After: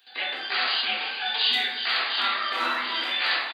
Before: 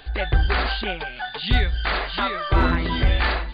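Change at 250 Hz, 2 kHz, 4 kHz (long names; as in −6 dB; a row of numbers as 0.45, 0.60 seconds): −16.5, 0.0, +5.5 decibels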